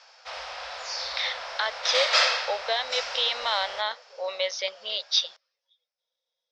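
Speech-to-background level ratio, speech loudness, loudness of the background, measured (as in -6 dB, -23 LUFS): 0.0 dB, -28.0 LUFS, -28.0 LUFS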